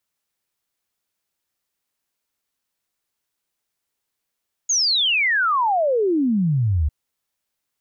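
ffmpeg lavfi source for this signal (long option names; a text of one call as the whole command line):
ffmpeg -f lavfi -i "aevalsrc='0.158*clip(min(t,2.2-t)/0.01,0,1)*sin(2*PI*6800*2.2/log(69/6800)*(exp(log(69/6800)*t/2.2)-1))':duration=2.2:sample_rate=44100" out.wav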